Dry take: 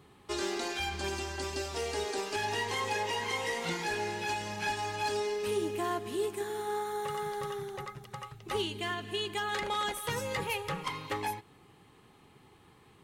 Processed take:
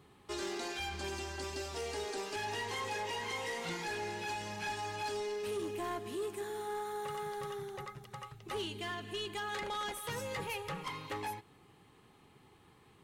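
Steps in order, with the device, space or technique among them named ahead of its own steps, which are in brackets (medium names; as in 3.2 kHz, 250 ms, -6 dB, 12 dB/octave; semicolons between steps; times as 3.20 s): saturation between pre-emphasis and de-emphasis (treble shelf 12 kHz +12 dB; saturation -29 dBFS, distortion -16 dB; treble shelf 12 kHz -12 dB); trim -3 dB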